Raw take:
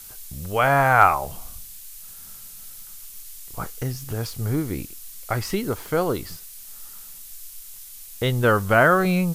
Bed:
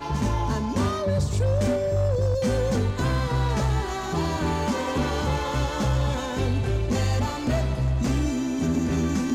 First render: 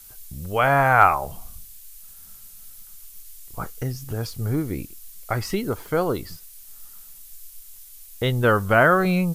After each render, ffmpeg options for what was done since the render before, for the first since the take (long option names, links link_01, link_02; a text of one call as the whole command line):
ffmpeg -i in.wav -af "afftdn=noise_reduction=6:noise_floor=-42" out.wav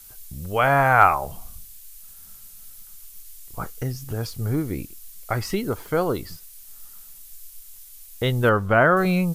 ffmpeg -i in.wav -filter_complex "[0:a]asettb=1/sr,asplit=3[link_01][link_02][link_03];[link_01]atrim=end=8.494[link_04];[link_02]atrim=start=8.49:end=8.97,asetpts=PTS-STARTPTS,afade=type=in:duration=0.004:curve=qsin,afade=type=out:start_time=0.476:duration=0.004:curve=qsin,lowpass=frequency=2400:poles=1[link_05];[link_03]atrim=start=8.966[link_06];[link_04][link_05]acrossfade=duration=0.004:curve1=hsin:curve2=qsin[link_07];[link_07][link_06]acrossfade=duration=0.004:curve1=qsin:curve2=hsin" out.wav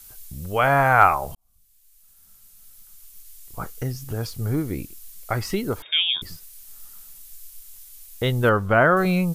ffmpeg -i in.wav -filter_complex "[0:a]asettb=1/sr,asplit=3[link_01][link_02][link_03];[link_01]atrim=end=5.824[link_04];[link_02]atrim=start=5.82:end=6.22,asetpts=PTS-STARTPTS,afade=type=in:duration=0.004:curve=qsin,afade=type=out:start_time=0.396:duration=0.004:curve=qsin,lowpass=frequency=3100:width_type=q:width=0.5098,lowpass=frequency=3100:width_type=q:width=0.6013,lowpass=frequency=3100:width_type=q:width=0.9,lowpass=frequency=3100:width_type=q:width=2.563,afreqshift=-3700[link_05];[link_03]atrim=start=6.216[link_06];[link_04][link_05]acrossfade=duration=0.004:curve1=hsin:curve2=qsin[link_07];[link_07][link_06]acrossfade=duration=0.004:curve1=qsin:curve2=hsin,asplit=2[link_08][link_09];[link_08]atrim=end=1.35,asetpts=PTS-STARTPTS,afade=type=out:start_time=1.346:duration=0.004:curve=hsin[link_10];[link_09]atrim=start=1.35,asetpts=PTS-STARTPTS,afade=type=in:duration=2.5[link_11];[link_10][link_11]concat=n=2:v=0:a=1" out.wav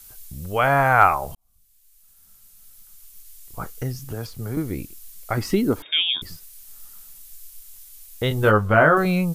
ffmpeg -i in.wav -filter_complex "[0:a]asettb=1/sr,asplit=3[link_01][link_02][link_03];[link_01]atrim=end=3.994[link_04];[link_02]atrim=start=3.99:end=4.57,asetpts=PTS-STARTPTS,afade=type=in:duration=0.004:curve=qsin,afade=type=out:start_time=0.576:duration=0.004:curve=qsin,acrossover=split=170|2600[link_05][link_06][link_07];[link_05]acompressor=threshold=-33dB:ratio=4[link_08];[link_06]acompressor=threshold=-29dB:ratio=4[link_09];[link_07]acompressor=threshold=-40dB:ratio=4[link_10];[link_08][link_09][link_10]amix=inputs=3:normalize=0[link_11];[link_03]atrim=start=4.566[link_12];[link_04][link_11]acrossfade=duration=0.004:curve1=hsin:curve2=qsin[link_13];[link_13][link_12]acrossfade=duration=0.004:curve1=qsin:curve2=hsin,asettb=1/sr,asplit=3[link_14][link_15][link_16];[link_14]atrim=end=5.374[link_17];[link_15]atrim=start=5.37:end=6.22,asetpts=PTS-STARTPTS,afade=type=in:duration=0.004:curve=qsin,afade=type=out:start_time=0.846:duration=0.004:curve=qsin,equalizer=frequency=270:width_type=o:width=1:gain=9.5[link_18];[link_16]atrim=start=6.216[link_19];[link_17][link_18]acrossfade=duration=0.004:curve1=hsin:curve2=qsin[link_20];[link_20][link_19]acrossfade=duration=0.004:curve1=qsin:curve2=hsin,asettb=1/sr,asplit=3[link_21][link_22][link_23];[link_21]atrim=end=8.294[link_24];[link_22]atrim=start=8.29:end=8.98,asetpts=PTS-STARTPTS,afade=type=in:duration=0.004:curve=qsin,afade=type=out:start_time=0.686:duration=0.004:curve=qsin,asplit=2[link_25][link_26];[link_26]adelay=19,volume=-4.5dB[link_27];[link_25][link_27]amix=inputs=2:normalize=0,atrim=end_sample=30429[link_28];[link_23]atrim=start=8.976[link_29];[link_24][link_28]acrossfade=duration=0.004:curve1=hsin:curve2=qsin[link_30];[link_30][link_29]acrossfade=duration=0.004:curve1=qsin:curve2=hsin" out.wav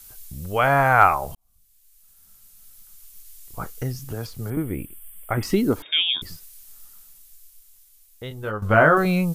ffmpeg -i in.wav -filter_complex "[0:a]asettb=1/sr,asplit=3[link_01][link_02][link_03];[link_01]atrim=end=4.504[link_04];[link_02]atrim=start=4.5:end=5.43,asetpts=PTS-STARTPTS,afade=type=in:duration=0.004:curve=qsin,afade=type=out:start_time=0.926:duration=0.004:curve=qsin,asuperstop=centerf=5300:order=20:qfactor=1.2[link_05];[link_03]atrim=start=5.426[link_06];[link_04][link_05]acrossfade=duration=0.004:curve1=hsin:curve2=qsin[link_07];[link_07][link_06]acrossfade=duration=0.004:curve1=qsin:curve2=hsin,asplit=2[link_08][link_09];[link_08]atrim=end=8.62,asetpts=PTS-STARTPTS,afade=type=out:start_time=6.31:duration=2.31:curve=qua:silence=0.237137[link_10];[link_09]atrim=start=8.62,asetpts=PTS-STARTPTS,afade=type=in:duration=0.004:curve=hsin:silence=0.237137[link_11];[link_10][link_11]concat=n=2:v=0:a=1" out.wav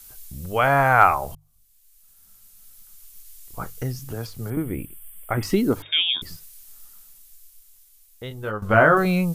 ffmpeg -i in.wav -af "bandreject=frequency=50:width_type=h:width=6,bandreject=frequency=100:width_type=h:width=6,bandreject=frequency=150:width_type=h:width=6" out.wav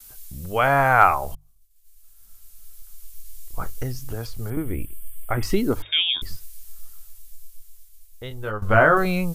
ffmpeg -i in.wav -af "agate=range=-33dB:threshold=-52dB:ratio=3:detection=peak,asubboost=boost=5.5:cutoff=64" out.wav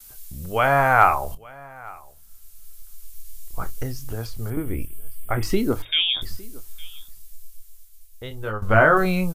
ffmpeg -i in.wav -filter_complex "[0:a]asplit=2[link_01][link_02];[link_02]adelay=27,volume=-13dB[link_03];[link_01][link_03]amix=inputs=2:normalize=0,aecho=1:1:859:0.0668" out.wav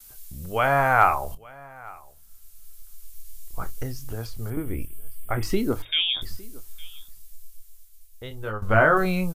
ffmpeg -i in.wav -af "volume=-2.5dB" out.wav